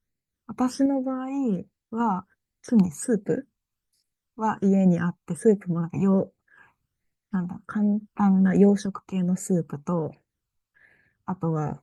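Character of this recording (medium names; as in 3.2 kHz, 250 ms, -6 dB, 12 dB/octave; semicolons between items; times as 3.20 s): phasing stages 12, 1.3 Hz, lowest notch 550–1100 Hz; random-step tremolo; Opus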